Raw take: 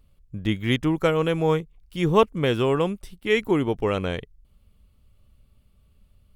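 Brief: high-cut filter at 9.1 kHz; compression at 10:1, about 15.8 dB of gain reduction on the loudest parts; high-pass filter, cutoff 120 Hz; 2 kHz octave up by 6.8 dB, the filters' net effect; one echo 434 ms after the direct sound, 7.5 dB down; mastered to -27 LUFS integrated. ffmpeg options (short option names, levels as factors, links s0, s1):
-af "highpass=120,lowpass=9100,equalizer=f=2000:t=o:g=8,acompressor=threshold=0.0398:ratio=10,aecho=1:1:434:0.422,volume=2"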